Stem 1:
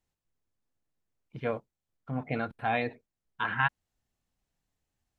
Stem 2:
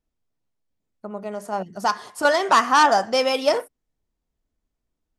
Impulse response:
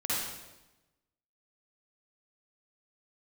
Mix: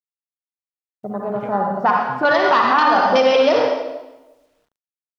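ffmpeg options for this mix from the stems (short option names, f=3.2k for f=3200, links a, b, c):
-filter_complex "[0:a]acompressor=threshold=-37dB:ratio=6,volume=2.5dB,asplit=2[a][b];[b]volume=-20.5dB[c];[1:a]afwtdn=0.0282,volume=2dB,asplit=2[d][e];[e]volume=-3.5dB[f];[2:a]atrim=start_sample=2205[g];[c][f]amix=inputs=2:normalize=0[h];[h][g]afir=irnorm=-1:irlink=0[i];[a][d][i]amix=inputs=3:normalize=0,lowpass=f=4.6k:w=0.5412,lowpass=f=4.6k:w=1.3066,acrusher=bits=10:mix=0:aa=0.000001,alimiter=limit=-6dB:level=0:latency=1:release=121"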